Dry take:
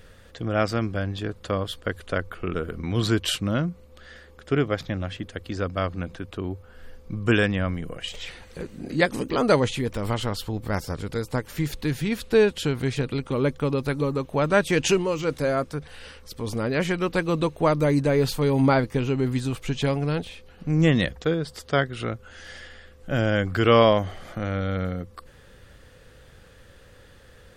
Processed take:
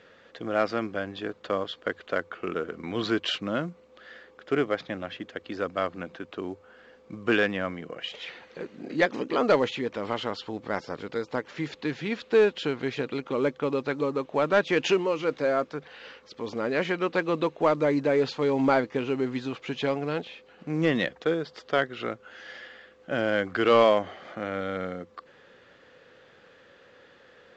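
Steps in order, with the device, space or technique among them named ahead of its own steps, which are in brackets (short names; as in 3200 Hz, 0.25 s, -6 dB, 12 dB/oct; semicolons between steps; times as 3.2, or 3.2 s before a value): telephone (BPF 280–3500 Hz; soft clip -10 dBFS, distortion -20 dB; µ-law 128 kbps 16000 Hz)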